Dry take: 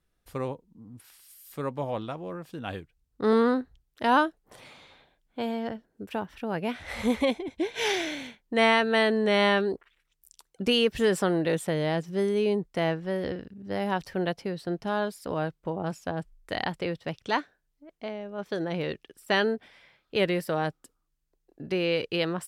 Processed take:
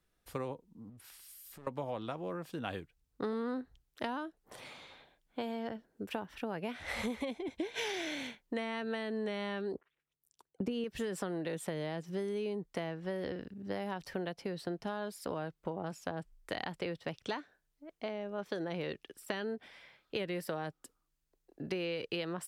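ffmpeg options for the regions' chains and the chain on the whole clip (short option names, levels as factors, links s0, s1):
-filter_complex "[0:a]asettb=1/sr,asplit=3[s0][s1][s2];[s0]atrim=end=0.894[s3];[s1]atrim=start=0.89:end=1.67,asetpts=PTS-STARTPTS,afade=t=in:d=0.004:c=qsin,afade=t=out:st=0.776:d=0.004:c=qsin,lowshelf=f=120:g=9,aeval=exprs='clip(val(0),-1,0.0075)':c=same,acompressor=threshold=0.00355:ratio=5:attack=3.2:release=140:knee=1:detection=peak[s4];[s2]atrim=start=1.666[s5];[s3][s4]acrossfade=d=0.004:c1=hsin:c2=qsin[s6];[s6][s5]acrossfade=d=0.004:c1=qsin:c2=hsin,asettb=1/sr,asplit=3[s7][s8][s9];[s7]atrim=end=9.744[s10];[s8]atrim=start=9.74:end=10.84,asetpts=PTS-STARTPTS,afade=t=in:d=0.004:c=qsin,afade=t=out:st=1.096:d=0.004:c=qsin,highpass=f=57:w=0.5412,highpass=f=57:w=1.3066,agate=range=0.282:threshold=0.00178:ratio=16:release=100:detection=peak,tiltshelf=f=1100:g=7[s11];[s9]atrim=start=10.836[s12];[s10][s11]acrossfade=d=0.004:c1=hsin:c2=qsin[s13];[s13][s12]acrossfade=d=0.004:c1=qsin:c2=hsin,acrossover=split=310[s14][s15];[s15]acompressor=threshold=0.0501:ratio=6[s16];[s14][s16]amix=inputs=2:normalize=0,lowshelf=f=160:g=-5,acompressor=threshold=0.02:ratio=6"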